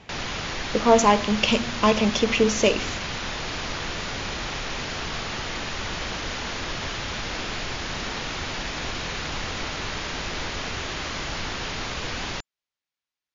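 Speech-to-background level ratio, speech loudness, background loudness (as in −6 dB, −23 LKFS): 8.5 dB, −21.5 LKFS, −30.0 LKFS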